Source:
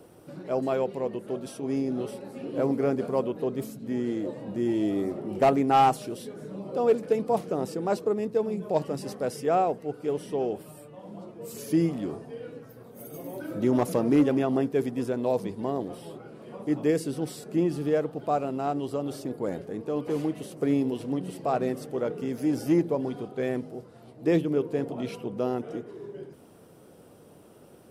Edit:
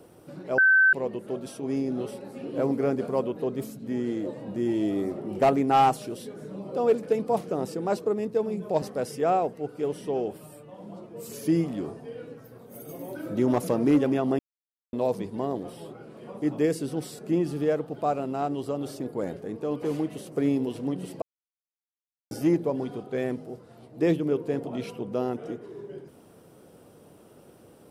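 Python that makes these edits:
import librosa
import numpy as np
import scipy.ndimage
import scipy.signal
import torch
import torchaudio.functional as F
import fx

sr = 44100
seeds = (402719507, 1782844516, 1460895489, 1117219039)

y = fx.edit(x, sr, fx.bleep(start_s=0.58, length_s=0.35, hz=1540.0, db=-15.0),
    fx.cut(start_s=8.82, length_s=0.25),
    fx.silence(start_s=14.64, length_s=0.54),
    fx.silence(start_s=21.47, length_s=1.09), tone=tone)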